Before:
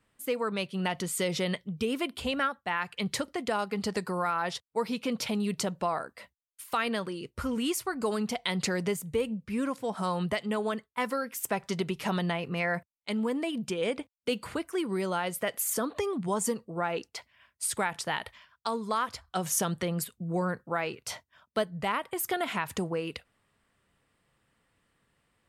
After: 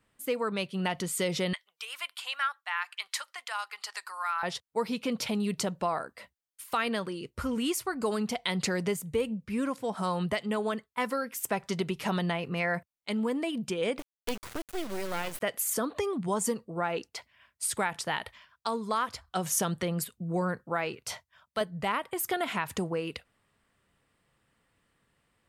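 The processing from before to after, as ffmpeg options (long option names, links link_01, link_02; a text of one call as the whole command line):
ffmpeg -i in.wav -filter_complex "[0:a]asettb=1/sr,asplit=3[link_01][link_02][link_03];[link_01]atrim=end=1.534[link_04];[link_02]atrim=start=1.53:end=4.43,asetpts=PTS-STARTPTS,afade=type=in:duration=0.004:curve=qsin,afade=type=out:start_time=2.896:duration=0.004:curve=qsin,highpass=frequency=1000:width=0.5412,highpass=frequency=1000:width=1.3066[link_05];[link_03]atrim=start=4.426[link_06];[link_04][link_05]acrossfade=duration=0.004:curve1=hsin:curve2=qsin[link_07];[link_07][link_06]acrossfade=duration=0.004:curve1=qsin:curve2=hsin,asplit=3[link_08][link_09][link_10];[link_08]afade=type=out:start_time=13.98:duration=0.02[link_11];[link_09]acrusher=bits=4:dc=4:mix=0:aa=0.000001,afade=type=in:start_time=13.98:duration=0.02,afade=type=out:start_time=15.4:duration=0.02[link_12];[link_10]afade=type=in:start_time=15.4:duration=0.02[link_13];[link_11][link_12][link_13]amix=inputs=3:normalize=0,asettb=1/sr,asplit=3[link_14][link_15][link_16];[link_14]atrim=end=21.154[link_17];[link_15]atrim=start=21.15:end=21.61,asetpts=PTS-STARTPTS,afade=type=in:duration=0.004:curve=qsin,afade=type=out:start_time=0.456:duration=0.004:curve=qsin,equalizer=frequency=310:width=1.7:gain=-15[link_18];[link_16]atrim=start=21.606[link_19];[link_17][link_18]acrossfade=duration=0.004:curve1=hsin:curve2=qsin[link_20];[link_20][link_19]acrossfade=duration=0.004:curve1=qsin:curve2=hsin" out.wav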